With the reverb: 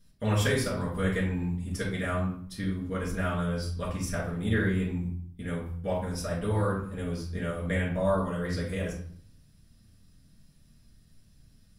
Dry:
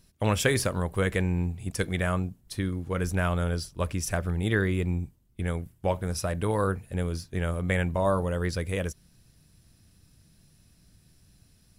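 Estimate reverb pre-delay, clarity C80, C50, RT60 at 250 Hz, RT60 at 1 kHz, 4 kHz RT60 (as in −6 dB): 4 ms, 9.0 dB, 4.0 dB, 0.70 s, 0.55 s, 0.45 s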